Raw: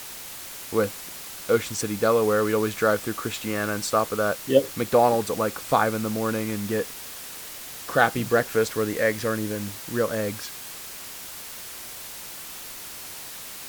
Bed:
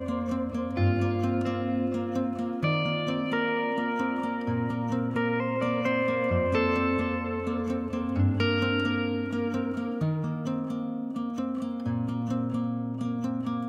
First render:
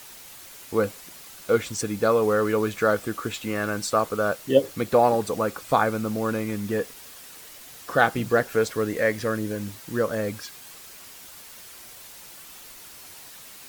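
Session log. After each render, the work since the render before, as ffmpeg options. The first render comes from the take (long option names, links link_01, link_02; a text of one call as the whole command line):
ffmpeg -i in.wav -af "afftdn=noise_reduction=7:noise_floor=-39" out.wav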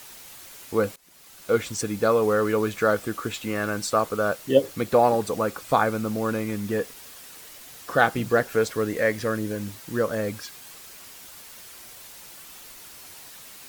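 ffmpeg -i in.wav -filter_complex "[0:a]asplit=2[link_01][link_02];[link_01]atrim=end=0.96,asetpts=PTS-STARTPTS,afade=type=out:start_time=0.956:duration=0.004:curve=hsin:silence=0.0891251[link_03];[link_02]atrim=start=0.96,asetpts=PTS-STARTPTS,afade=type=in:duration=0.64:silence=0.0891251[link_04];[link_03][link_04]concat=n=2:v=0:a=1" out.wav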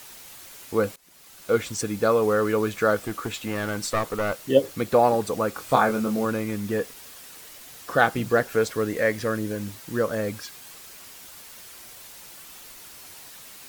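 ffmpeg -i in.wav -filter_complex "[0:a]asettb=1/sr,asplit=3[link_01][link_02][link_03];[link_01]atrim=end=3.034[link_04];[link_02]atrim=start=3.03:end=4.44,asetpts=PTS-STARTPTS,afade=type=in:duration=0.004:curve=qsin,afade=type=out:start_time=1.406:duration=0.004:curve=qsin,aeval=exprs='clip(val(0),-1,0.0531)':channel_layout=same[link_05];[link_03]atrim=start=4.436[link_06];[link_04][link_05]acrossfade=duration=0.004:curve1=hsin:curve2=qsin[link_07];[link_07][link_06]acrossfade=duration=0.004:curve1=qsin:curve2=hsin,asettb=1/sr,asplit=3[link_08][link_09][link_10];[link_08]atrim=end=5.534[link_11];[link_09]atrim=start=5.53:end=6.25,asetpts=PTS-STARTPTS,afade=type=in:duration=0.004:curve=qsin,afade=type=out:start_time=0.716:duration=0.004:curve=qsin,asplit=2[link_12][link_13];[link_13]adelay=23,volume=-4dB[link_14];[link_12][link_14]amix=inputs=2:normalize=0,atrim=end_sample=31752[link_15];[link_10]atrim=start=6.246[link_16];[link_11][link_15]acrossfade=duration=0.004:curve1=hsin:curve2=qsin[link_17];[link_17][link_16]acrossfade=duration=0.004:curve1=qsin:curve2=hsin" out.wav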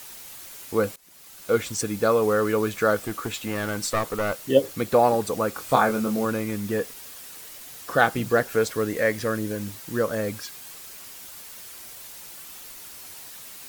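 ffmpeg -i in.wav -af "highshelf=frequency=6900:gain=4" out.wav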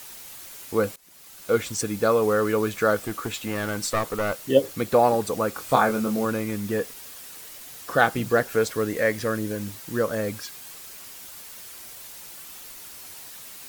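ffmpeg -i in.wav -af anull out.wav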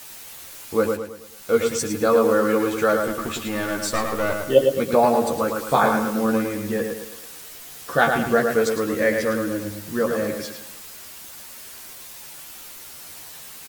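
ffmpeg -i in.wav -filter_complex "[0:a]asplit=2[link_01][link_02];[link_02]adelay=13,volume=-4dB[link_03];[link_01][link_03]amix=inputs=2:normalize=0,asplit=2[link_04][link_05];[link_05]adelay=108,lowpass=frequency=4000:poles=1,volume=-4.5dB,asplit=2[link_06][link_07];[link_07]adelay=108,lowpass=frequency=4000:poles=1,volume=0.43,asplit=2[link_08][link_09];[link_09]adelay=108,lowpass=frequency=4000:poles=1,volume=0.43,asplit=2[link_10][link_11];[link_11]adelay=108,lowpass=frequency=4000:poles=1,volume=0.43,asplit=2[link_12][link_13];[link_13]adelay=108,lowpass=frequency=4000:poles=1,volume=0.43[link_14];[link_06][link_08][link_10][link_12][link_14]amix=inputs=5:normalize=0[link_15];[link_04][link_15]amix=inputs=2:normalize=0" out.wav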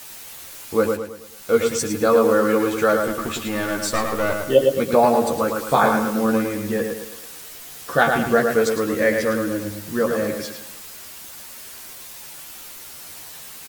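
ffmpeg -i in.wav -af "volume=1.5dB,alimiter=limit=-3dB:level=0:latency=1" out.wav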